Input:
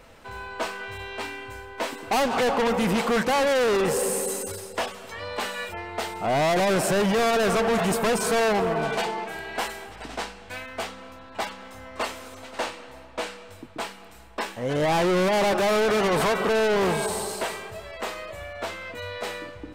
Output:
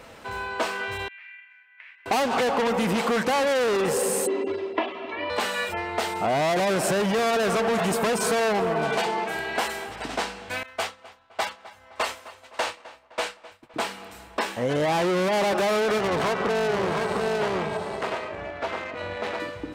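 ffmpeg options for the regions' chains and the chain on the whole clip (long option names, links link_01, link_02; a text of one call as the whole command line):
ffmpeg -i in.wav -filter_complex "[0:a]asettb=1/sr,asplit=3[link_01][link_02][link_03];[link_01]atrim=end=1.084[link_04];[link_02]atrim=start=1.08:end=2.06,asetpts=PTS-STARTPTS,afade=type=in:duration=0.004:curve=qsin,afade=type=out:start_time=0.976:duration=0.004:curve=qsin,agate=range=-10dB:threshold=-37dB:ratio=16:release=100:detection=peak,acompressor=threshold=-40dB:ratio=6:attack=3.2:release=140:knee=1:detection=peak,asuperpass=centerf=2100:order=4:qfactor=2.4[link_05];[link_03]atrim=start=2.056[link_06];[link_04][link_05]acrossfade=duration=0.004:curve1=hsin:curve2=qsin[link_07];[link_07][link_06]acrossfade=duration=0.004:curve1=qsin:curve2=hsin,asettb=1/sr,asplit=3[link_08][link_09][link_10];[link_08]atrim=end=4.274[link_11];[link_09]atrim=start=4.27:end=5.3,asetpts=PTS-STARTPTS,afade=type=in:duration=0.004:curve=qsin,afade=type=out:start_time=1.026:duration=0.004:curve=qsin,highpass=190,equalizer=frequency=320:width_type=q:width=4:gain=9,equalizer=frequency=660:width_type=q:width=4:gain=-3,equalizer=frequency=1500:width_type=q:width=4:gain=-10,lowpass=frequency=2900:width=0.5412,lowpass=frequency=2900:width=1.3066,aecho=1:1:3:0.93,atrim=end_sample=45423[link_12];[link_10]atrim=start=5.296[link_13];[link_11][link_12]acrossfade=duration=0.004:curve1=hsin:curve2=qsin[link_14];[link_14][link_13]acrossfade=duration=0.004:curve1=qsin:curve2=hsin,asettb=1/sr,asplit=3[link_15][link_16][link_17];[link_15]atrim=end=10.634[link_18];[link_16]atrim=start=10.63:end=13.74,asetpts=PTS-STARTPTS,afade=type=in:duration=0.004:curve=qsin,afade=type=out:start_time=3.106:duration=0.004:curve=qsin,agate=range=-33dB:threshold=-33dB:ratio=3:release=100:detection=peak,equalizer=frequency=240:width=0.91:gain=-10,asplit=2[link_19][link_20];[link_20]adelay=257,lowpass=frequency=3600:poles=1,volume=-18.5dB,asplit=2[link_21][link_22];[link_22]adelay=257,lowpass=frequency=3600:poles=1,volume=0.48,asplit=2[link_23][link_24];[link_24]adelay=257,lowpass=frequency=3600:poles=1,volume=0.48,asplit=2[link_25][link_26];[link_26]adelay=257,lowpass=frequency=3600:poles=1,volume=0.48[link_27];[link_19][link_21][link_23][link_25][link_27]amix=inputs=5:normalize=0,atrim=end_sample=137151[link_28];[link_17]atrim=start=13.736[link_29];[link_18][link_28]acrossfade=duration=0.004:curve1=hsin:curve2=qsin[link_30];[link_30][link_29]acrossfade=duration=0.004:curve1=qsin:curve2=hsin,asettb=1/sr,asplit=3[link_31][link_32][link_33];[link_31]atrim=end=15.984[link_34];[link_32]atrim=start=15.98:end=19.4,asetpts=PTS-STARTPTS,afade=type=in:duration=0.004:curve=qsin,afade=type=out:start_time=3.416:duration=0.004:curve=qsin,aecho=1:1:706:0.631,atrim=end_sample=150822,adynamicsmooth=sensitivity=3:basefreq=2200,tremolo=f=270:d=0.667[link_35];[link_33]atrim=start=19.396[link_36];[link_34][link_35]acrossfade=duration=0.004:curve1=hsin:curve2=qsin[link_37];[link_37][link_36]acrossfade=duration=0.004:curve1=qsin:curve2=hsin,highpass=frequency=110:poles=1,highshelf=frequency=11000:gain=-3,acompressor=threshold=-27dB:ratio=6,volume=5.5dB" out.wav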